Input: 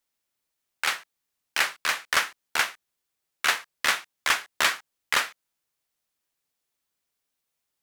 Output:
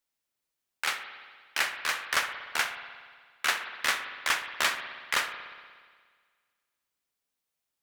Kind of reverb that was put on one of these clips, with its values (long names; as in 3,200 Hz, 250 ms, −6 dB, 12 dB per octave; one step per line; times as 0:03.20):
spring reverb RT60 1.7 s, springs 59 ms, chirp 30 ms, DRR 8 dB
level −4 dB